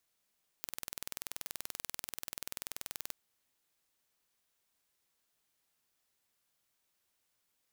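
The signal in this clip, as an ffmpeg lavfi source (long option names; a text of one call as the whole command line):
ffmpeg -f lavfi -i "aevalsrc='0.251*eq(mod(n,2130),0)':duration=2.48:sample_rate=44100" out.wav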